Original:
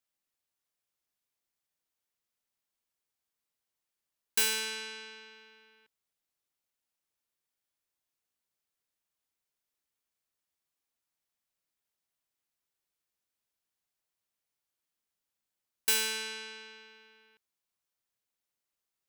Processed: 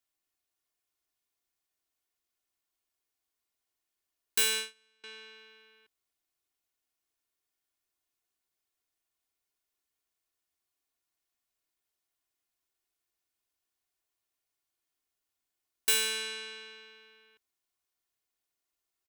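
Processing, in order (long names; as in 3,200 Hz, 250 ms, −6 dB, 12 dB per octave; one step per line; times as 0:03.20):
0:04.38–0:05.04: noise gate −33 dBFS, range −30 dB
comb filter 2.8 ms, depth 51%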